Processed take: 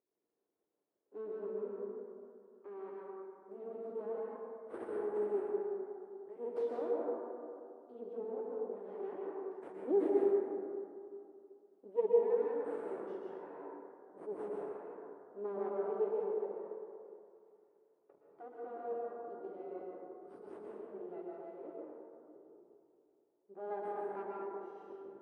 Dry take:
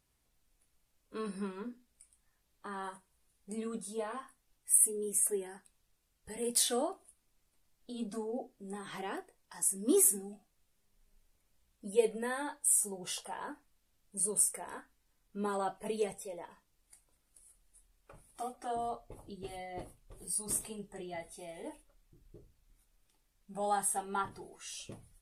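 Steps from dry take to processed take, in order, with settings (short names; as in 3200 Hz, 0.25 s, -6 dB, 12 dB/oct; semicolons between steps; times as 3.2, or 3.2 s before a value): half-wave rectifier; ladder band-pass 430 Hz, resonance 60%; plate-style reverb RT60 2.5 s, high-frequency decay 0.35×, pre-delay 0.105 s, DRR -4 dB; gain +7 dB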